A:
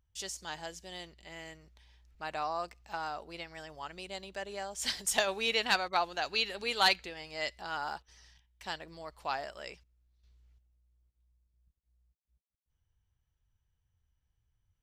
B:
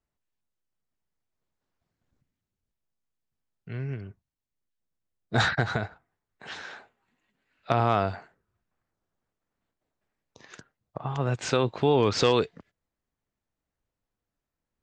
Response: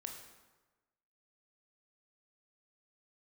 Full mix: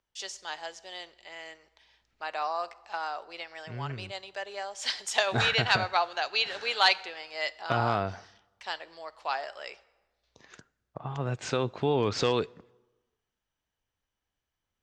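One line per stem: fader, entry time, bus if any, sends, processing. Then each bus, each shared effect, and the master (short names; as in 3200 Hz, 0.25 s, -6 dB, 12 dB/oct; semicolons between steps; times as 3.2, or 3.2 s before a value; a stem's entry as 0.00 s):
+2.5 dB, 0.00 s, send -9.5 dB, three-band isolator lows -22 dB, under 390 Hz, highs -23 dB, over 6900 Hz
-5.0 dB, 0.00 s, send -17.5 dB, dry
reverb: on, RT60 1.2 s, pre-delay 18 ms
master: dry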